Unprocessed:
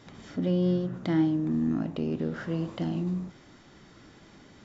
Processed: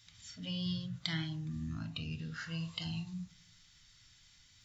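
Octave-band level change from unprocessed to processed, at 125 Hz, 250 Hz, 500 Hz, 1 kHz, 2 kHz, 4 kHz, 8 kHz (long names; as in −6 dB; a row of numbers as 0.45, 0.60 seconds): −8.0 dB, −14.0 dB, −24.0 dB, −11.5 dB, −1.0 dB, +7.0 dB, can't be measured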